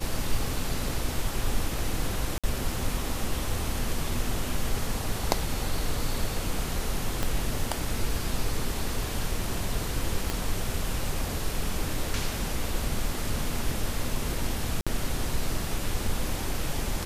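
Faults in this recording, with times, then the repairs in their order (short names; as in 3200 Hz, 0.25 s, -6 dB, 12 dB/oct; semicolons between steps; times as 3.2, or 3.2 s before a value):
2.38–2.44 gap 56 ms
7.23 pop -12 dBFS
10.3 pop -13 dBFS
14.81–14.87 gap 56 ms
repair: de-click; interpolate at 2.38, 56 ms; interpolate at 14.81, 56 ms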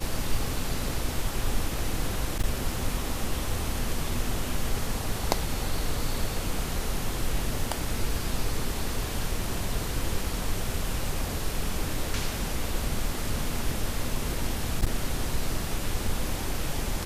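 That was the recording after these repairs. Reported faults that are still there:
7.23 pop
10.3 pop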